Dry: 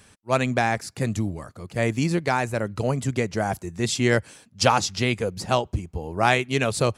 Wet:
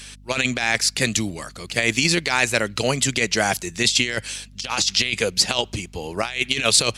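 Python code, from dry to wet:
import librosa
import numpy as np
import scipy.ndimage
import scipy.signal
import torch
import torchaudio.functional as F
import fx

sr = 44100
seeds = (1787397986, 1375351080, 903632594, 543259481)

y = fx.weighting(x, sr, curve='D')
y = fx.over_compress(y, sr, threshold_db=-22.0, ratio=-0.5)
y = fx.add_hum(y, sr, base_hz=50, snr_db=21)
y = fx.high_shelf(y, sr, hz=2600.0, db=7.5)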